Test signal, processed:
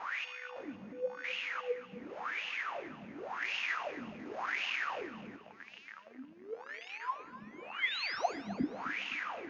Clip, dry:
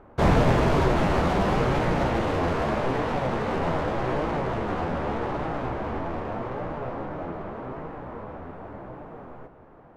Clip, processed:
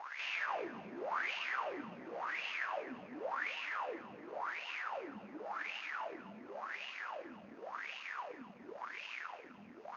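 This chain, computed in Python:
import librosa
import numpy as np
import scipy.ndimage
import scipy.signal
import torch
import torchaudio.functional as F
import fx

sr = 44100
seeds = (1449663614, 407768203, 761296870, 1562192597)

p1 = x + 0.5 * 10.0 ** (-28.5 / 20.0) * np.sign(x)
p2 = np.diff(p1, prepend=0.0)
p3 = fx.sample_hold(p2, sr, seeds[0], rate_hz=5300.0, jitter_pct=0)
p4 = p2 + F.gain(torch.from_numpy(p3), -3.5).numpy()
p5 = scipy.signal.sosfilt(scipy.signal.cheby1(6, 3, 6700.0, 'lowpass', fs=sr, output='sos'), p4)
p6 = fx.wah_lfo(p5, sr, hz=0.91, low_hz=200.0, high_hz=2800.0, q=9.4)
p7 = fx.echo_feedback(p6, sr, ms=256, feedback_pct=42, wet_db=-15.0)
p8 = fx.rev_fdn(p7, sr, rt60_s=1.5, lf_ratio=1.0, hf_ratio=0.75, size_ms=59.0, drr_db=15.5)
y = F.gain(torch.from_numpy(p8), 12.0).numpy()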